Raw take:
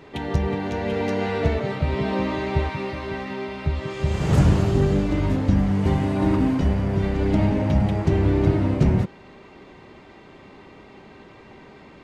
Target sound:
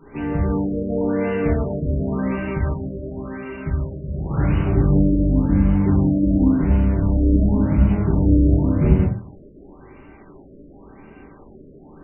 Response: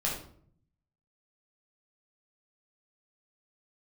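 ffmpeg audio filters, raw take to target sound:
-filter_complex "[0:a]asettb=1/sr,asplit=3[link_01][link_02][link_03];[link_01]atrim=end=3.924[link_04];[link_02]atrim=start=3.92:end=4.63,asetpts=PTS-STARTPTS,afade=type=in:duration=0.004:curve=qsin,afade=type=out:start_time=0.706:duration=0.004:curve=qsin,tiltshelf=frequency=1300:gain=-6[link_05];[link_03]atrim=start=4.626[link_06];[link_04][link_05]acrossfade=duration=0.004:curve1=hsin:curve2=qsin[link_07];[link_07][link_06]acrossfade=duration=0.004:curve1=qsin:curve2=hsin[link_08];[1:a]atrim=start_sample=2205,asetrate=83790,aresample=44100[link_09];[link_08][link_09]afir=irnorm=-1:irlink=0,afftfilt=real='re*lt(b*sr/1024,620*pow(3100/620,0.5+0.5*sin(2*PI*0.92*pts/sr)))':imag='im*lt(b*sr/1024,620*pow(3100/620,0.5+0.5*sin(2*PI*0.92*pts/sr)))':win_size=1024:overlap=0.75,volume=-1.5dB"

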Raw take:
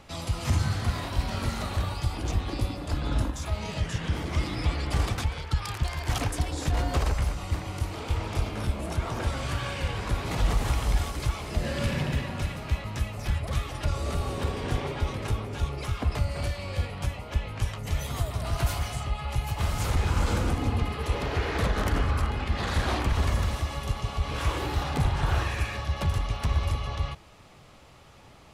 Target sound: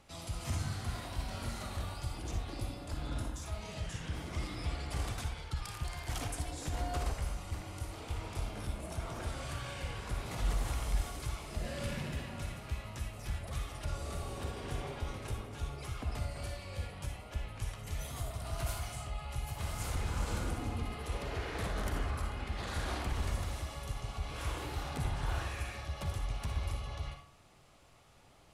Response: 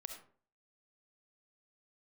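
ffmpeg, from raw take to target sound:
-filter_complex "[0:a]equalizer=frequency=10000:width=0.84:gain=6.5[link_01];[1:a]atrim=start_sample=2205,asetrate=48510,aresample=44100[link_02];[link_01][link_02]afir=irnorm=-1:irlink=0,volume=-5.5dB"

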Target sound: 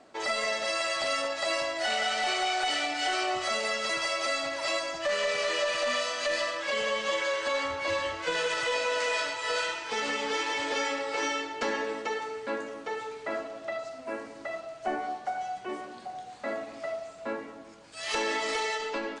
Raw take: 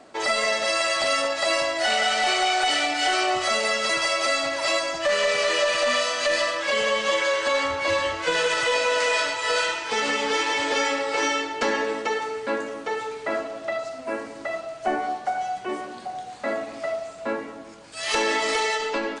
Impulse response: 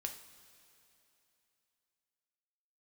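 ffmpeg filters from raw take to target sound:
-af "lowpass=9600,volume=-6.5dB"

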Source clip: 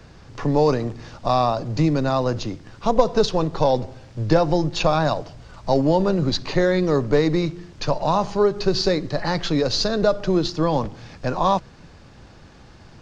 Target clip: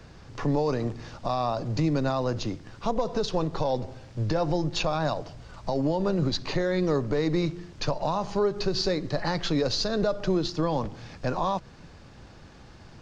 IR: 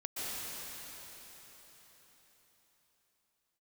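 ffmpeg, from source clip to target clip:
-af "alimiter=limit=-14dB:level=0:latency=1:release=168,volume=-2.5dB"

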